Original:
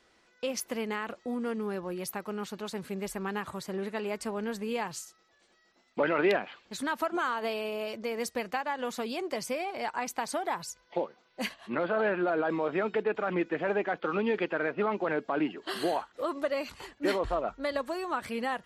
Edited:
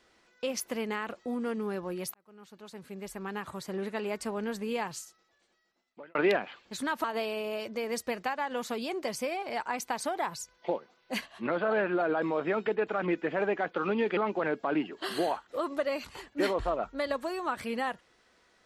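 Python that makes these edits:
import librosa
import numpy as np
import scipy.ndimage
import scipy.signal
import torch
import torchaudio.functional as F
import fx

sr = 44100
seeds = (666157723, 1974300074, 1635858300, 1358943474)

y = fx.edit(x, sr, fx.fade_in_span(start_s=2.14, length_s=1.69),
    fx.fade_out_span(start_s=4.83, length_s=1.32),
    fx.cut(start_s=7.04, length_s=0.28),
    fx.cut(start_s=14.45, length_s=0.37), tone=tone)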